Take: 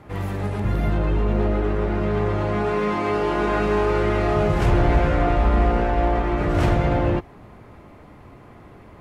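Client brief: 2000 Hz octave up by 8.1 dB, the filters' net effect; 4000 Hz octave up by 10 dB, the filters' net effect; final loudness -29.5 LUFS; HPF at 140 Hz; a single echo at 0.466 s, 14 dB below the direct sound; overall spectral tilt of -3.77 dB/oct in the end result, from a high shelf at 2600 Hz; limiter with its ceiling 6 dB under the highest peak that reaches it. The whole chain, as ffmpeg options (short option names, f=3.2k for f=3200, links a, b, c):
-af "highpass=140,equalizer=f=2k:t=o:g=6.5,highshelf=f=2.6k:g=5.5,equalizer=f=4k:t=o:g=6,alimiter=limit=-13dB:level=0:latency=1,aecho=1:1:466:0.2,volume=-7dB"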